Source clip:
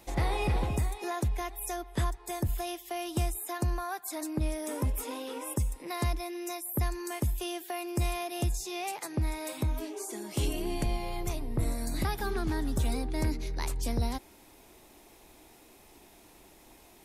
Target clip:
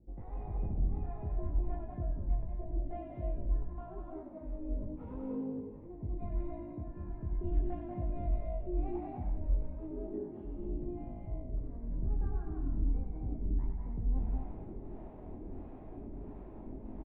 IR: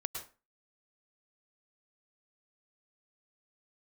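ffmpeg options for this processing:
-filter_complex "[0:a]lowshelf=frequency=470:gain=9.5,areverse,acompressor=threshold=-44dB:ratio=6,areverse,flanger=delay=18.5:depth=6.6:speed=0.36,aresample=11025,adynamicsmooth=sensitivity=6.5:basefreq=780,aresample=44100,acrossover=split=520[link_01][link_02];[link_01]aeval=exprs='val(0)*(1-1/2+1/2*cos(2*PI*1.5*n/s))':channel_layout=same[link_03];[link_02]aeval=exprs='val(0)*(1-1/2-1/2*cos(2*PI*1.5*n/s))':channel_layout=same[link_04];[link_03][link_04]amix=inputs=2:normalize=0,asplit=7[link_05][link_06][link_07][link_08][link_09][link_10][link_11];[link_06]adelay=97,afreqshift=-54,volume=-5.5dB[link_12];[link_07]adelay=194,afreqshift=-108,volume=-11.5dB[link_13];[link_08]adelay=291,afreqshift=-162,volume=-17.5dB[link_14];[link_09]adelay=388,afreqshift=-216,volume=-23.6dB[link_15];[link_10]adelay=485,afreqshift=-270,volume=-29.6dB[link_16];[link_11]adelay=582,afreqshift=-324,volume=-35.6dB[link_17];[link_05][link_12][link_13][link_14][link_15][link_16][link_17]amix=inputs=7:normalize=0[link_18];[1:a]atrim=start_sample=2205,asetrate=24255,aresample=44100[link_19];[link_18][link_19]afir=irnorm=-1:irlink=0,volume=8.5dB"

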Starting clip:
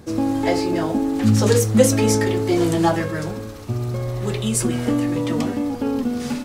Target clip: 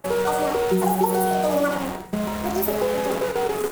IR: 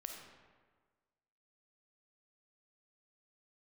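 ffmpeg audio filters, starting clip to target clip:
-filter_complex "[0:a]acrossover=split=650[link_01][link_02];[link_01]aeval=exprs='sgn(val(0))*max(abs(val(0))-0.00596,0)':channel_layout=same[link_03];[link_02]equalizer=frequency=1700:width_type=o:width=1.4:gain=-14[link_04];[link_03][link_04]amix=inputs=2:normalize=0,asetrate=76440,aresample=44100,asplit=2[link_05][link_06];[link_06]acrusher=bits=3:mix=0:aa=0.000001,volume=-3dB[link_07];[link_05][link_07]amix=inputs=2:normalize=0,equalizer=frequency=5100:width_type=o:width=0.77:gain=-2.5[link_08];[1:a]atrim=start_sample=2205,afade=type=out:start_time=0.17:duration=0.01,atrim=end_sample=7938[link_09];[link_08][link_09]afir=irnorm=-1:irlink=0,acompressor=threshold=-18dB:ratio=3"

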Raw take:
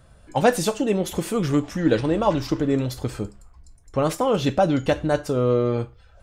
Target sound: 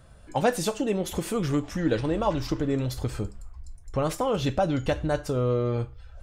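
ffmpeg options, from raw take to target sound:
ffmpeg -i in.wav -filter_complex "[0:a]asubboost=boost=2.5:cutoff=120,asplit=2[link_01][link_02];[link_02]acompressor=threshold=-27dB:ratio=6,volume=2dB[link_03];[link_01][link_03]amix=inputs=2:normalize=0,volume=-7.5dB" out.wav

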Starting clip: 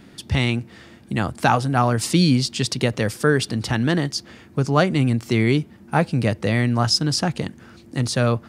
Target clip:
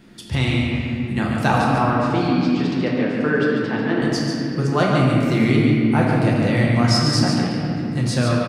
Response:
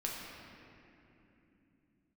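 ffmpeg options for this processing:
-filter_complex "[0:a]asettb=1/sr,asplit=3[link_01][link_02][link_03];[link_01]atrim=end=1.754[link_04];[link_02]atrim=start=1.75:end=4.02,asetpts=PTS-STARTPTS,afade=type=in:duration=0.004:curve=qsin,afade=type=out:start_time=2.266:duration=0.004:curve=qsin,highpass=230,lowpass=2400[link_05];[link_03]atrim=start=4.016[link_06];[link_04][link_05]acrossfade=duration=0.004:curve1=hsin:curve2=qsin[link_07];[link_07][link_06]acrossfade=duration=0.004:curve1=qsin:curve2=hsin,aecho=1:1:143:0.501[link_08];[1:a]atrim=start_sample=2205[link_09];[link_08][link_09]afir=irnorm=-1:irlink=0,volume=-1.5dB"

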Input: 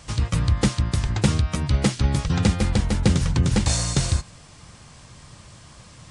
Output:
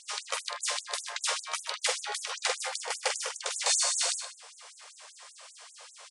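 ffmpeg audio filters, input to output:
ffmpeg -i in.wav -filter_complex "[0:a]asettb=1/sr,asplit=3[link_01][link_02][link_03];[link_01]atrim=end=2.714[link_04];[link_02]atrim=start=2.71:end=3.46,asetpts=PTS-STARTPTS,afade=type=in:duration=0.004:curve=qsin,afade=type=out:start_time=0.746:duration=0.004:curve=qsin,bandreject=frequency=3900:width=8.9[link_05];[link_03]atrim=start=3.456[link_06];[link_04][link_05]acrossfade=duration=0.004:curve1=hsin:curve2=qsin[link_07];[link_07][link_06]acrossfade=duration=0.004:curve1=qsin:curve2=hsin,asplit=2[link_08][link_09];[link_09]aecho=0:1:46|79|125:0.501|0.141|0.282[link_10];[link_08][link_10]amix=inputs=2:normalize=0,afftfilt=real='re*gte(b*sr/1024,390*pow(6600/390,0.5+0.5*sin(2*PI*5.1*pts/sr)))':imag='im*gte(b*sr/1024,390*pow(6600/390,0.5+0.5*sin(2*PI*5.1*pts/sr)))':win_size=1024:overlap=0.75" out.wav

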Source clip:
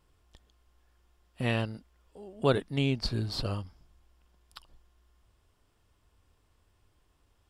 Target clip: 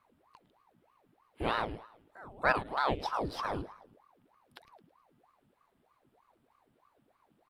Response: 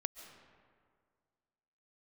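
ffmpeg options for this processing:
-af "equalizer=frequency=6100:width=1.3:gain=-13,aecho=1:1:108|216|324|432:0.158|0.065|0.0266|0.0109,aeval=exprs='val(0)*sin(2*PI*670*n/s+670*0.75/3.2*sin(2*PI*3.2*n/s))':channel_layout=same"

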